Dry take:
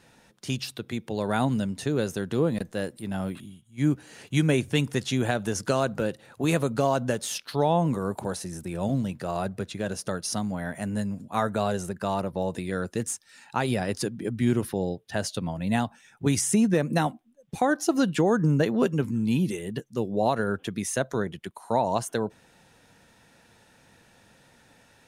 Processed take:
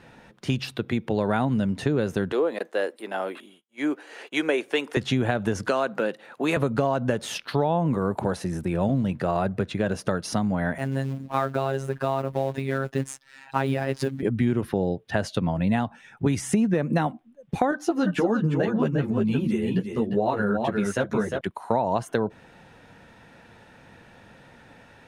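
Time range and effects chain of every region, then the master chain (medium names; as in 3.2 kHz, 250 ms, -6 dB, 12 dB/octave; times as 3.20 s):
2.32–4.97 s: expander -49 dBFS + high-pass 370 Hz 24 dB/octave
5.68–6.57 s: high-pass 180 Hz 24 dB/octave + bass shelf 370 Hz -10 dB
10.78–14.23 s: block-companded coder 5-bit + robot voice 135 Hz
17.71–21.41 s: delay 352 ms -7 dB + three-phase chorus
whole clip: tone controls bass 0 dB, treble -14 dB; compression 4:1, threshold -28 dBFS; trim +8 dB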